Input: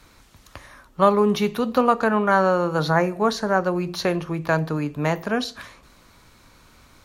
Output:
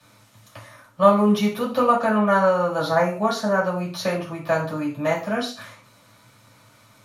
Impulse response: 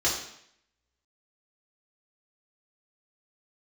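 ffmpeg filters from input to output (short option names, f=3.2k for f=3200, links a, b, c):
-filter_complex "[1:a]atrim=start_sample=2205,afade=t=out:st=0.34:d=0.01,atrim=end_sample=15435,asetrate=79380,aresample=44100[a];[0:a][a]afir=irnorm=-1:irlink=0,volume=-7dB"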